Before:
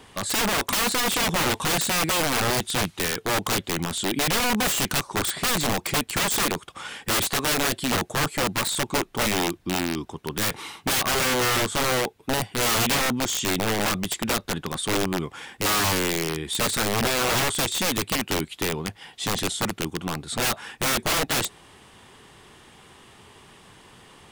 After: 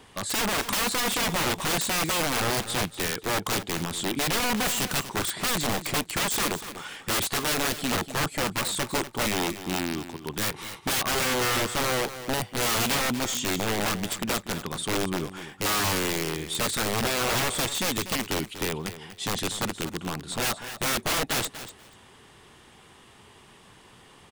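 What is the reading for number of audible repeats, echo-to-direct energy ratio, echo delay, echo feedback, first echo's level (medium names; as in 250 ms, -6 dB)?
2, -12.5 dB, 242 ms, 17%, -12.5 dB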